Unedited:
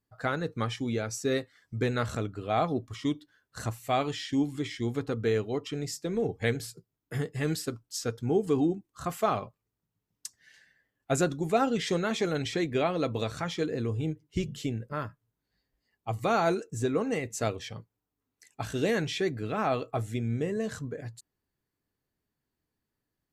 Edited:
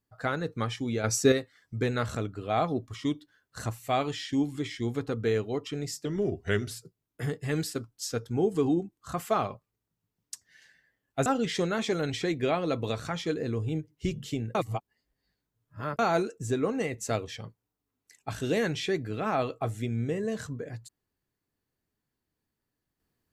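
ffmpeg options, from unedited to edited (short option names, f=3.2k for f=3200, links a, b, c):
-filter_complex "[0:a]asplit=8[a][b][c][d][e][f][g][h];[a]atrim=end=1.042[i];[b]atrim=start=1.038:end=1.322,asetpts=PTS-STARTPTS,volume=8dB[j];[c]atrim=start=1.318:end=6.054[k];[d]atrim=start=6.05:end=6.63,asetpts=PTS-STARTPTS,asetrate=38808,aresample=44100[l];[e]atrim=start=6.626:end=11.182[m];[f]atrim=start=11.578:end=14.872[n];[g]atrim=start=14.868:end=16.312,asetpts=PTS-STARTPTS,areverse[o];[h]atrim=start=16.308[p];[i][j]acrossfade=d=0.004:c1=hsin:c2=hsin[q];[q][k]acrossfade=d=0.004:c1=hsin:c2=hsin[r];[r][l]acrossfade=d=0.004:c1=hsin:c2=hsin[s];[s][m]acrossfade=d=0.004:c1=hsin:c2=hsin[t];[t][n]acrossfade=d=0.004:c1=hsin:c2=hsin[u];[u][o]acrossfade=d=0.004:c1=hsin:c2=hsin[v];[v][p]acrossfade=d=0.004:c1=hsin:c2=hsin"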